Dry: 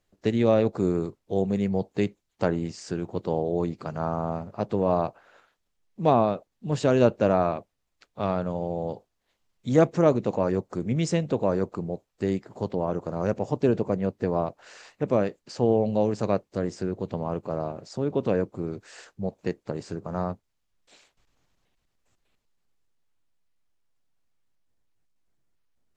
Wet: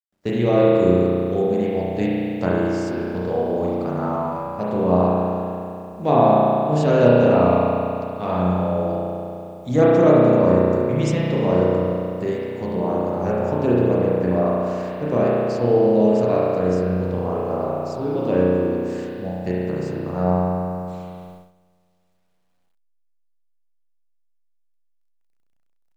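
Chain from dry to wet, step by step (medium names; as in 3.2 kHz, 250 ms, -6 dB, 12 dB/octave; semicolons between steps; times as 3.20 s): spring tank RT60 2.7 s, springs 33 ms, chirp 40 ms, DRR -7 dB; word length cut 10-bit, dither none; gate -39 dBFS, range -14 dB; trim -1 dB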